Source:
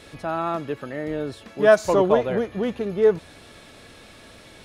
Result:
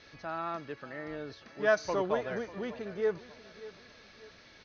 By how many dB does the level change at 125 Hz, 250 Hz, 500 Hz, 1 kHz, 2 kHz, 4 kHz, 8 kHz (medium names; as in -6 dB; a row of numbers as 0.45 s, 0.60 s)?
-13.5 dB, -13.0 dB, -12.5 dB, -10.0 dB, -6.5 dB, -8.5 dB, -10.0 dB